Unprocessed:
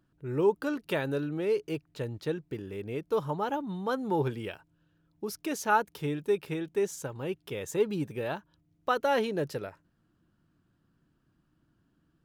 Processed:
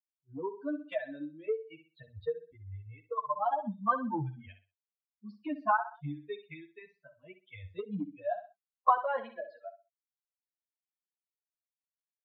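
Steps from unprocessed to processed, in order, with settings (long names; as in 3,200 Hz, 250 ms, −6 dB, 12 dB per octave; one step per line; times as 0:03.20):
spectral dynamics exaggerated over time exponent 3
Butterworth low-pass 3,700 Hz 72 dB per octave
noise reduction from a noise print of the clip's start 20 dB
high-pass filter 88 Hz 24 dB per octave, from 0:08.97 330 Hz
repeating echo 63 ms, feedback 24%, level −12.5 dB
downward compressor 10 to 1, threshold −47 dBFS, peak gain reduction 24 dB
parametric band 1,100 Hz +14.5 dB 0.76 octaves
automatic gain control gain up to 11 dB
parametric band 2,800 Hz −10 dB 1.6 octaves
hollow resonant body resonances 710/1,000/1,500 Hz, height 10 dB, ringing for 40 ms
barber-pole flanger 8.3 ms +0.4 Hz
level +5 dB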